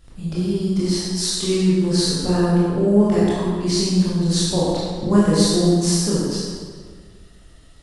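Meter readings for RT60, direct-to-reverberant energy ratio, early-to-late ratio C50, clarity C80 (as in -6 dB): 1.7 s, -8.5 dB, -2.5 dB, -0.5 dB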